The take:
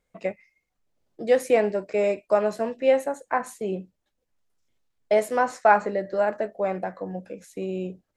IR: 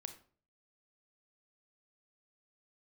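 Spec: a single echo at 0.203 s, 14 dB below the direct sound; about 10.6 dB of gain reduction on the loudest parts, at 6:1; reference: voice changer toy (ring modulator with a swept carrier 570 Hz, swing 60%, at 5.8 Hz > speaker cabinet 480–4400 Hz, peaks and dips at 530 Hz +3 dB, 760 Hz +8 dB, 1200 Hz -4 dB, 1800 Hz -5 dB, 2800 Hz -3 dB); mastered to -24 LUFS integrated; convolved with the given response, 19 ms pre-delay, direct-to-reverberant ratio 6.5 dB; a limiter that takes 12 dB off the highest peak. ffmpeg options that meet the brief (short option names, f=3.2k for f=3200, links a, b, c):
-filter_complex "[0:a]acompressor=threshold=-25dB:ratio=6,alimiter=level_in=1dB:limit=-24dB:level=0:latency=1,volume=-1dB,aecho=1:1:203:0.2,asplit=2[a][b];[1:a]atrim=start_sample=2205,adelay=19[c];[b][c]afir=irnorm=-1:irlink=0,volume=-2.5dB[d];[a][d]amix=inputs=2:normalize=0,aeval=exprs='val(0)*sin(2*PI*570*n/s+570*0.6/5.8*sin(2*PI*5.8*n/s))':c=same,highpass=480,equalizer=f=530:t=q:w=4:g=3,equalizer=f=760:t=q:w=4:g=8,equalizer=f=1.2k:t=q:w=4:g=-4,equalizer=f=1.8k:t=q:w=4:g=-5,equalizer=f=2.8k:t=q:w=4:g=-3,lowpass=f=4.4k:w=0.5412,lowpass=f=4.4k:w=1.3066,volume=14.5dB"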